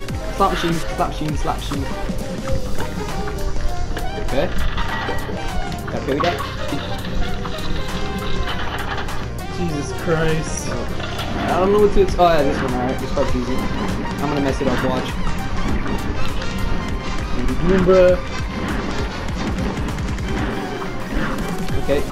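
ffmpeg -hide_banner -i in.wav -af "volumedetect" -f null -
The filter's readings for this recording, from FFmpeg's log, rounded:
mean_volume: -19.1 dB
max_volume: -3.4 dB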